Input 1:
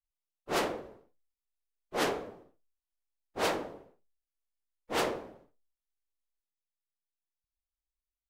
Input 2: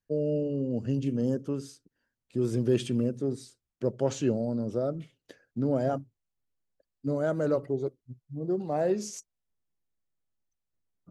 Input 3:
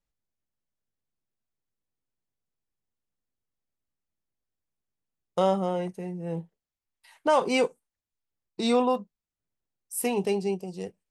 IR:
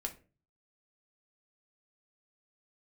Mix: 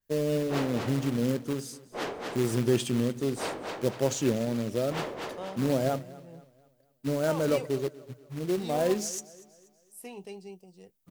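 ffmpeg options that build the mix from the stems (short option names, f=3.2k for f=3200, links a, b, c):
-filter_complex "[0:a]equalizer=f=11k:w=0.84:g=-7.5,volume=-4dB,asplit=2[a][b];[b]volume=-3.5dB[c];[1:a]aemphasis=mode=production:type=50fm,acrusher=bits=3:mode=log:mix=0:aa=0.000001,adynamicequalizer=threshold=0.00398:dfrequency=5300:dqfactor=0.7:tfrequency=5300:tqfactor=0.7:attack=5:release=100:ratio=0.375:range=2:mode=cutabove:tftype=highshelf,volume=0.5dB,asplit=2[d][e];[e]volume=-20dB[f];[2:a]adynamicequalizer=threshold=0.0126:dfrequency=2000:dqfactor=0.7:tfrequency=2000:tqfactor=0.7:attack=5:release=100:ratio=0.375:range=2:mode=boostabove:tftype=highshelf,volume=-16.5dB[g];[c][f]amix=inputs=2:normalize=0,aecho=0:1:241|482|723|964|1205|1446:1|0.42|0.176|0.0741|0.0311|0.0131[h];[a][d][g][h]amix=inputs=4:normalize=0"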